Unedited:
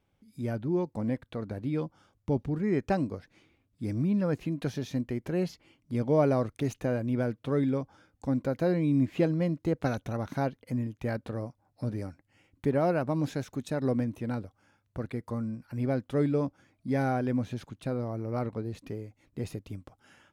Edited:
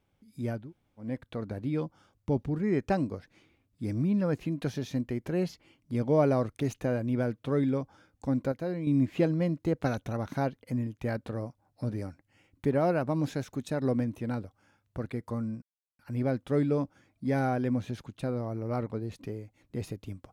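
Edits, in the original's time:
0.61–1.08 s: room tone, crossfade 0.24 s
8.52–8.87 s: gain -6.5 dB
15.62 s: insert silence 0.37 s

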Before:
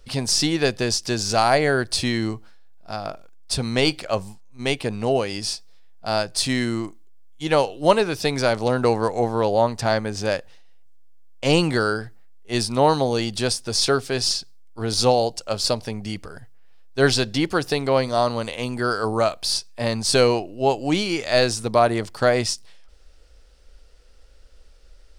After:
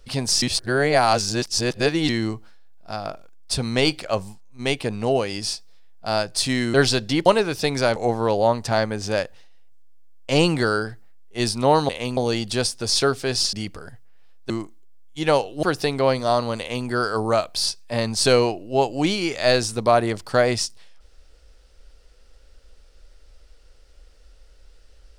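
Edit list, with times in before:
0.42–2.09 s: reverse
6.74–7.87 s: swap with 16.99–17.51 s
8.57–9.10 s: delete
14.39–16.02 s: delete
18.47–18.75 s: copy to 13.03 s

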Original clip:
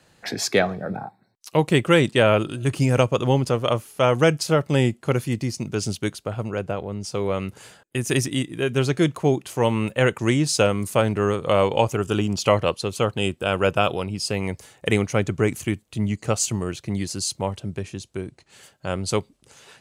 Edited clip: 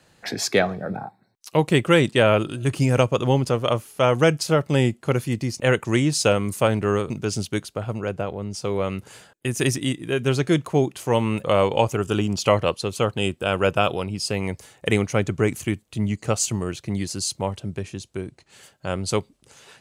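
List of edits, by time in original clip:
9.94–11.44 s: move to 5.60 s

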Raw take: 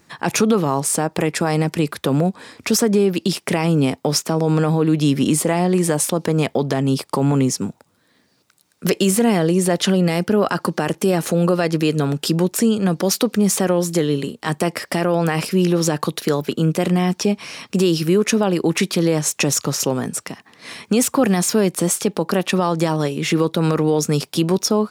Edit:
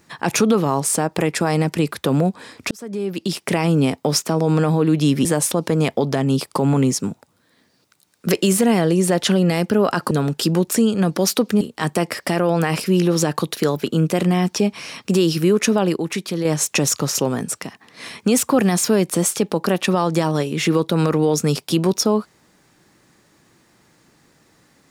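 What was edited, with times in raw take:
2.71–3.55 s: fade in
5.25–5.83 s: delete
10.69–11.95 s: delete
13.45–14.26 s: delete
18.61–19.10 s: gain -6 dB

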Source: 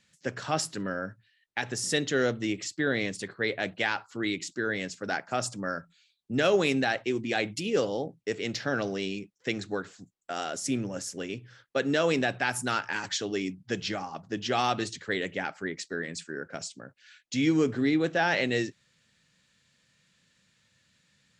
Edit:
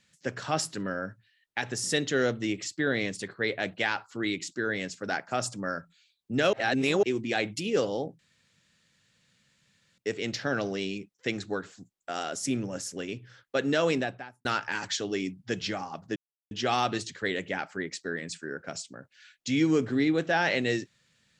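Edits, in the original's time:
6.53–7.03 s: reverse
8.19 s: insert room tone 1.79 s
12.06–12.66 s: studio fade out
14.37 s: insert silence 0.35 s

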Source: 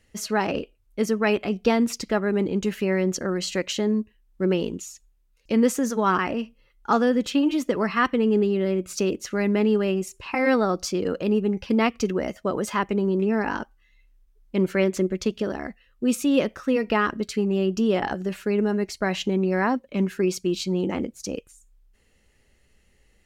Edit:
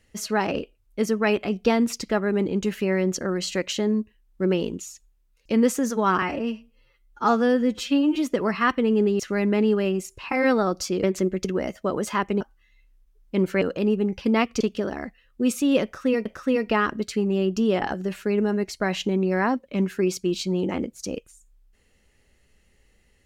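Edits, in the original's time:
6.22–7.51 s: stretch 1.5×
8.55–9.22 s: delete
11.06–12.05 s: swap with 14.82–15.23 s
13.01–13.61 s: delete
16.46–16.88 s: loop, 2 plays

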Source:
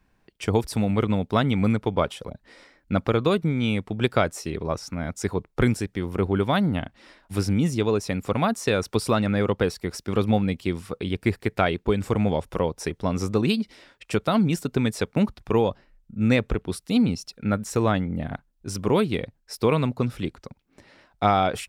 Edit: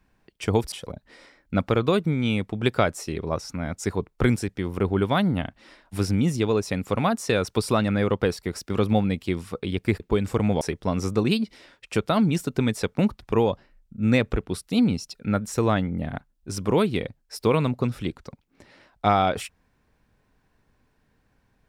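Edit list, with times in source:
0.72–2.10 s: delete
11.38–11.76 s: delete
12.37–12.79 s: delete

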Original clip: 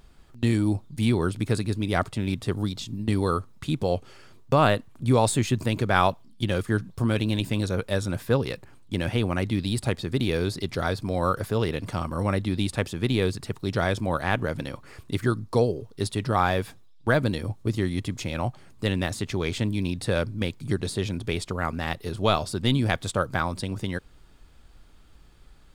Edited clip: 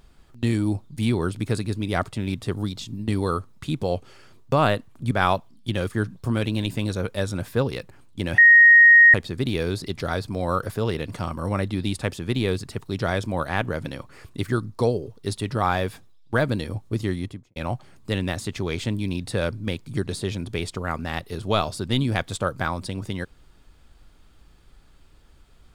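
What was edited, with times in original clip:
5.11–5.85 s: delete
9.12–9.88 s: bleep 1.87 kHz -8 dBFS
17.85–18.30 s: studio fade out

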